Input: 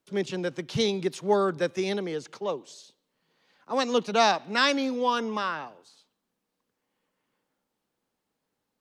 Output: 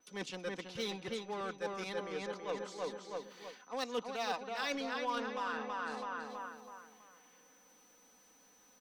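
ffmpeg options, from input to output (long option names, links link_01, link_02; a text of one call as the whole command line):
ffmpeg -i in.wav -filter_complex "[0:a]acompressor=mode=upward:threshold=-41dB:ratio=2.5,agate=range=-10dB:threshold=-54dB:ratio=16:detection=peak,asplit=2[link_01][link_02];[link_02]acrusher=bits=3:mix=0:aa=0.5,volume=-7dB[link_03];[link_01][link_03]amix=inputs=2:normalize=0,lowshelf=frequency=420:gain=-9.5,asplit=2[link_04][link_05];[link_05]adelay=327,lowpass=frequency=2600:poles=1,volume=-4dB,asplit=2[link_06][link_07];[link_07]adelay=327,lowpass=frequency=2600:poles=1,volume=0.42,asplit=2[link_08][link_09];[link_09]adelay=327,lowpass=frequency=2600:poles=1,volume=0.42,asplit=2[link_10][link_11];[link_11]adelay=327,lowpass=frequency=2600:poles=1,volume=0.42,asplit=2[link_12][link_13];[link_13]adelay=327,lowpass=frequency=2600:poles=1,volume=0.42[link_14];[link_04][link_06][link_08][link_10][link_12][link_14]amix=inputs=6:normalize=0,areverse,acompressor=threshold=-41dB:ratio=5,areverse,aeval=exprs='val(0)+0.000282*sin(2*PI*6000*n/s)':channel_layout=same,aecho=1:1:4:0.51,adynamicequalizer=threshold=0.00141:dfrequency=4700:dqfactor=0.7:tfrequency=4700:tqfactor=0.7:attack=5:release=100:ratio=0.375:range=2.5:mode=cutabove:tftype=highshelf,volume=2.5dB" out.wav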